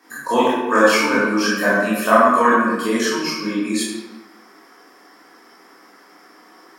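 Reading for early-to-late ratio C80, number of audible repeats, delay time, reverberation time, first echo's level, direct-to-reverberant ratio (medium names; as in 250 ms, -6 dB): 1.0 dB, no echo, no echo, 1.2 s, no echo, -10.0 dB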